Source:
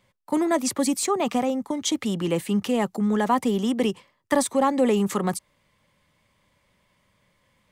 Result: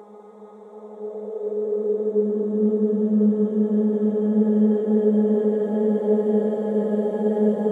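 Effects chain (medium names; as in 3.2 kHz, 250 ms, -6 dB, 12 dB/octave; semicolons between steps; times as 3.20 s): Paulstretch 47×, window 0.25 s, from 3.05 s; FFT filter 170 Hz 0 dB, 500 Hz +10 dB, 1.1 kHz -12 dB; high-pass sweep 920 Hz -> 160 Hz, 0.61–3.36 s; trim -6 dB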